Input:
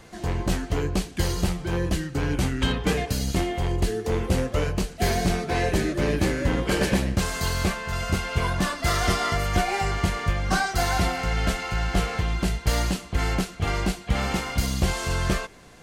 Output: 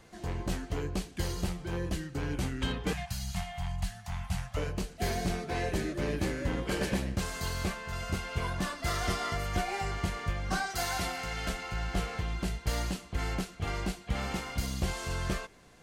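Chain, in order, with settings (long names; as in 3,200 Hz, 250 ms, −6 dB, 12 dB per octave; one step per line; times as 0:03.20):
0:02.93–0:04.57: elliptic band-stop filter 180–710 Hz, stop band 40 dB
0:10.70–0:11.49: spectral tilt +1.5 dB per octave
level −8.5 dB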